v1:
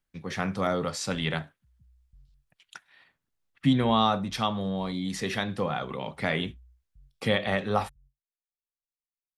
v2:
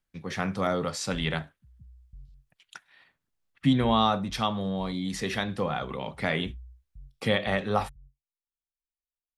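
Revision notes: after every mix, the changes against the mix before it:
background +9.0 dB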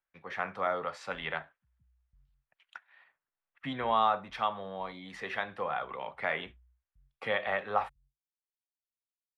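master: add three-band isolator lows -19 dB, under 540 Hz, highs -22 dB, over 2.6 kHz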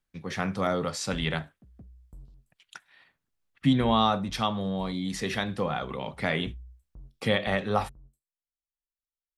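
background: remove inverse Chebyshev low-pass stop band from 870 Hz, stop band 80 dB; master: remove three-band isolator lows -19 dB, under 540 Hz, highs -22 dB, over 2.6 kHz

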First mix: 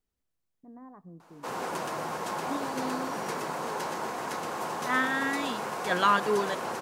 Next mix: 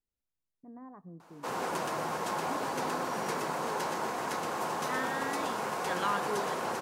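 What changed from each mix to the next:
second voice -9.0 dB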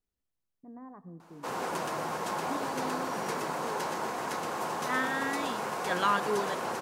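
first voice: send +8.5 dB; second voice +5.0 dB

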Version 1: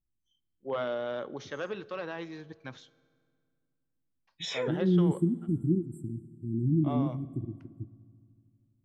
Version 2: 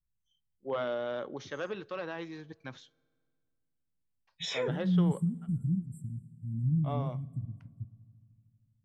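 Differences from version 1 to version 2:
first voice: send -8.5 dB; second voice: add inverse Chebyshev band-stop 440–1100 Hz, stop band 60 dB

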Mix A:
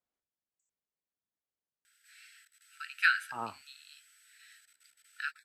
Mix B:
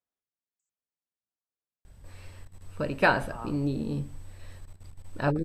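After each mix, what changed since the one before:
first voice: remove brick-wall FIR high-pass 1.3 kHz; second voice -3.0 dB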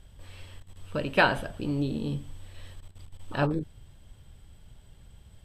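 first voice: entry -1.85 s; master: add peaking EQ 3.2 kHz +11.5 dB 0.36 oct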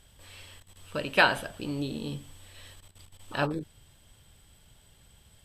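master: add tilt EQ +2 dB/octave

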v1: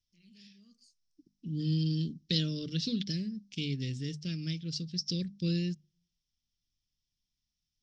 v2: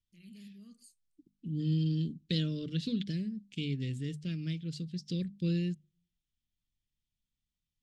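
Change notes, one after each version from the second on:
first voice +8.0 dB; master: remove resonant low-pass 5.5 kHz, resonance Q 7.2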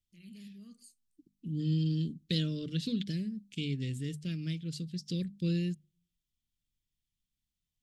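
first voice: send on; second voice: remove distance through air 54 m

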